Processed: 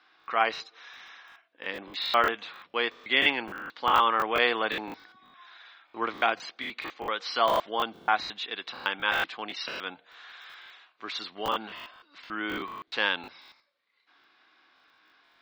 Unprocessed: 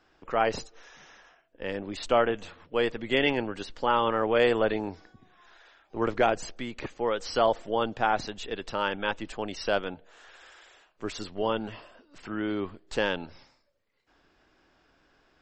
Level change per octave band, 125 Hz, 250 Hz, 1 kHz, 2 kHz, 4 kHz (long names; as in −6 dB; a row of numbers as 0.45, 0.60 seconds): −11.5, −7.0, +2.0, +4.5, +5.0 decibels